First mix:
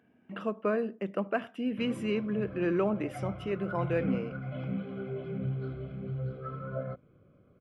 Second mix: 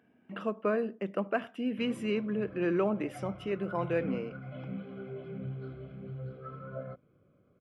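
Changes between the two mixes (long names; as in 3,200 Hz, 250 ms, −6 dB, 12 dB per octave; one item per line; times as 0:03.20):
background −4.0 dB
master: add low-shelf EQ 83 Hz −6.5 dB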